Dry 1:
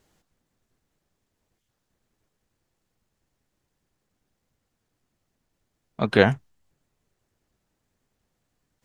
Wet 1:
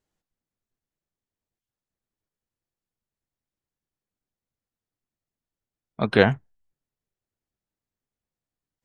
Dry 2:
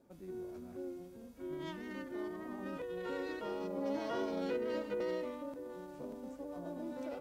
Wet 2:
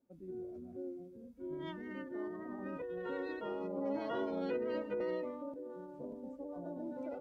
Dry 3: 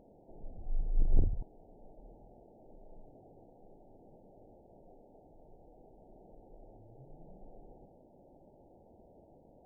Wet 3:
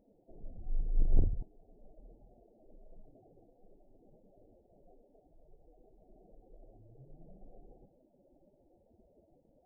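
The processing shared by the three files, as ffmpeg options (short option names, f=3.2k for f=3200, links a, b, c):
-af "afftdn=nr=16:nf=-49"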